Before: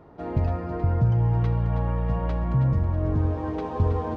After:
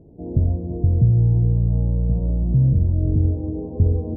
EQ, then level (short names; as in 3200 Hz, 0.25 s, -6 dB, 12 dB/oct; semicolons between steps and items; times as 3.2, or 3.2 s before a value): Gaussian blur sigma 19 samples; +6.0 dB